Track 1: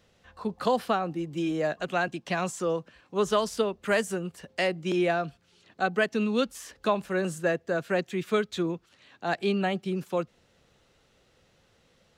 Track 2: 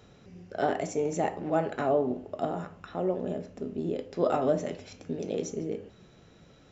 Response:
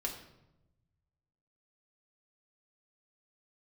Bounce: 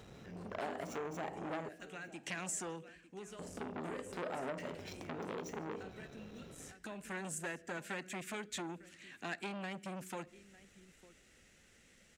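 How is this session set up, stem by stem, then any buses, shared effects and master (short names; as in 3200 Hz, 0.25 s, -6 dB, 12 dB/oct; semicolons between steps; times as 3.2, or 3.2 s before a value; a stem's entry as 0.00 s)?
0.0 dB, 0.00 s, send -17 dB, echo send -22 dB, graphic EQ 125/250/500/1000/2000/4000/8000 Hz -8/+3/-6/-10/+7/-7/+9 dB; compressor 10:1, threshold -36 dBFS, peak gain reduction 15.5 dB; auto duck -19 dB, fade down 0.70 s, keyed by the second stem
+2.5 dB, 0.00 s, muted 1.69–3.39, no send, echo send -20.5 dB, median filter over 5 samples; compressor 8:1, threshold -37 dBFS, peak gain reduction 16.5 dB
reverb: on, RT60 0.90 s, pre-delay 5 ms
echo: echo 0.903 s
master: core saturation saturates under 1600 Hz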